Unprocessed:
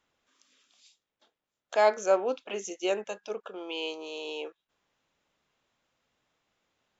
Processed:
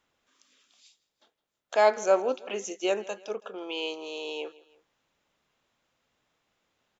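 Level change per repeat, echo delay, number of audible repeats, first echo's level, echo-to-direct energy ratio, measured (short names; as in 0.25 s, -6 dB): -6.0 dB, 0.163 s, 2, -21.0 dB, -20.0 dB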